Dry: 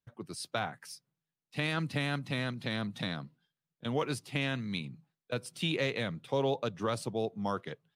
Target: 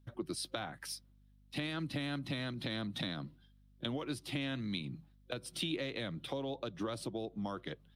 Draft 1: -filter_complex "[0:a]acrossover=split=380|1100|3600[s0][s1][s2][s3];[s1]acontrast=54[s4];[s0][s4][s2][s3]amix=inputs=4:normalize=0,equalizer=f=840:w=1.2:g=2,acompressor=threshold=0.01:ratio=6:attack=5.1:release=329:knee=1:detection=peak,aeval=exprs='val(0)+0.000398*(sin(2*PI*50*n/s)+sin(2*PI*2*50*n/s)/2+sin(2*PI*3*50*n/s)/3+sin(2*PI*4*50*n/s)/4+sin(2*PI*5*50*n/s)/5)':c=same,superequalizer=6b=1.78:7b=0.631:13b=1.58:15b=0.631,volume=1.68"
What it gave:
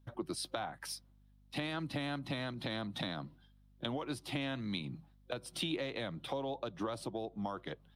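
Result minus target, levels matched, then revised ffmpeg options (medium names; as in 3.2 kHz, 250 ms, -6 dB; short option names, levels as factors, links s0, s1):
1 kHz band +4.0 dB
-filter_complex "[0:a]acrossover=split=380|1100|3600[s0][s1][s2][s3];[s1]acontrast=54[s4];[s0][s4][s2][s3]amix=inputs=4:normalize=0,equalizer=f=840:w=1.2:g=-6,acompressor=threshold=0.01:ratio=6:attack=5.1:release=329:knee=1:detection=peak,aeval=exprs='val(0)+0.000398*(sin(2*PI*50*n/s)+sin(2*PI*2*50*n/s)/2+sin(2*PI*3*50*n/s)/3+sin(2*PI*4*50*n/s)/4+sin(2*PI*5*50*n/s)/5)':c=same,superequalizer=6b=1.78:7b=0.631:13b=1.58:15b=0.631,volume=1.68"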